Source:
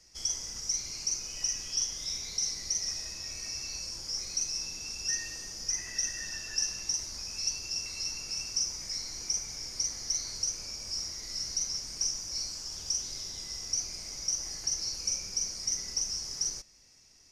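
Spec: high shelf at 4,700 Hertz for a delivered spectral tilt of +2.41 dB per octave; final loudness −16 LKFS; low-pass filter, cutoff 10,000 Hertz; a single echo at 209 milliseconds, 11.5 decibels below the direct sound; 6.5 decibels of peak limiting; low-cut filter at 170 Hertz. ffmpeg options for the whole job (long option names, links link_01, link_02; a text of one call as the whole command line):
ffmpeg -i in.wav -af "highpass=170,lowpass=10000,highshelf=frequency=4700:gain=4.5,alimiter=limit=-22dB:level=0:latency=1,aecho=1:1:209:0.266,volume=15.5dB" out.wav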